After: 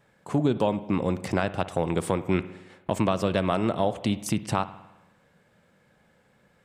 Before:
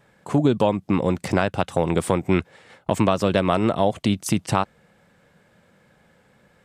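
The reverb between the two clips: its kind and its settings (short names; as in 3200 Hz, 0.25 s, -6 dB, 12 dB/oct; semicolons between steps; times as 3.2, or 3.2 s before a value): spring tank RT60 1 s, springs 53 ms, chirp 55 ms, DRR 14 dB; gain -5 dB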